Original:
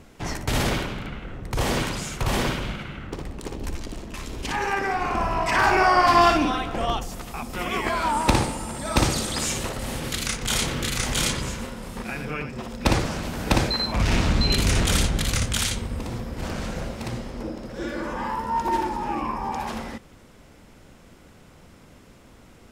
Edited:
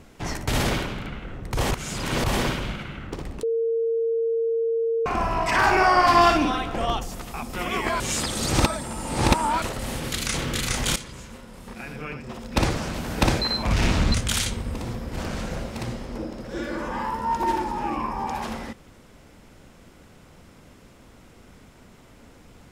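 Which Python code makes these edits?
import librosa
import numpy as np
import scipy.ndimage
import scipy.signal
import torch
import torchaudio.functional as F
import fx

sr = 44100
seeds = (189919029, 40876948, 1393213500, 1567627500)

y = fx.edit(x, sr, fx.reverse_span(start_s=1.71, length_s=0.53),
    fx.bleep(start_s=3.43, length_s=1.63, hz=457.0, db=-20.5),
    fx.reverse_span(start_s=8.0, length_s=1.62),
    fx.cut(start_s=10.34, length_s=0.29),
    fx.fade_in_from(start_s=11.25, length_s=2.02, floor_db=-14.0),
    fx.cut(start_s=14.43, length_s=0.96), tone=tone)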